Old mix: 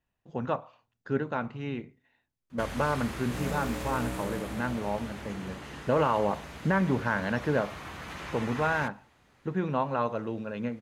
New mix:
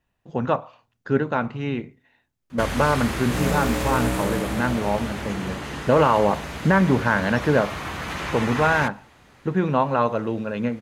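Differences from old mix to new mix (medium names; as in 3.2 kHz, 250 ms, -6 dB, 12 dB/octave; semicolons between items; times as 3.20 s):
speech +8.0 dB; background +10.5 dB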